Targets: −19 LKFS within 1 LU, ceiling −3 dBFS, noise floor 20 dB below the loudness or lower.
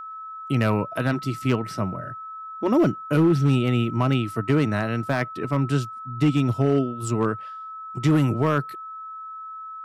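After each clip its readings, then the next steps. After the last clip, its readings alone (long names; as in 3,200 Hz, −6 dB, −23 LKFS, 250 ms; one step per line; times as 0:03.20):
share of clipped samples 0.6%; peaks flattened at −12.5 dBFS; interfering tone 1,300 Hz; level of the tone −34 dBFS; integrated loudness −23.5 LKFS; sample peak −12.5 dBFS; target loudness −19.0 LKFS
→ clipped peaks rebuilt −12.5 dBFS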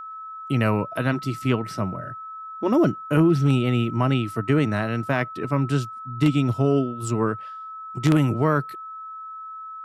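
share of clipped samples 0.0%; interfering tone 1,300 Hz; level of the tone −34 dBFS
→ notch filter 1,300 Hz, Q 30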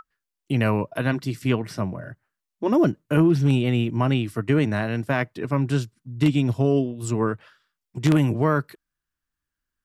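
interfering tone none found; integrated loudness −23.0 LKFS; sample peak −4.0 dBFS; target loudness −19.0 LKFS
→ level +4 dB
brickwall limiter −3 dBFS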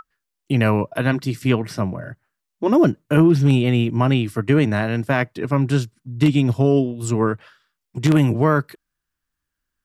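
integrated loudness −19.0 LKFS; sample peak −3.0 dBFS; background noise floor −81 dBFS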